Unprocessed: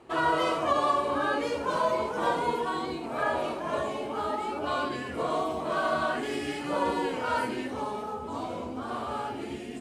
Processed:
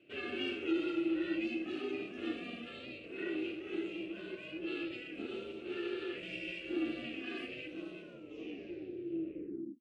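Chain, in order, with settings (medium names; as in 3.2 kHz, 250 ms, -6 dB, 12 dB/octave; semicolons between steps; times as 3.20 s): tape stop on the ending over 1.81 s; ring modulator 240 Hz; two resonant band-passes 930 Hz, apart 3 oct; trim +6 dB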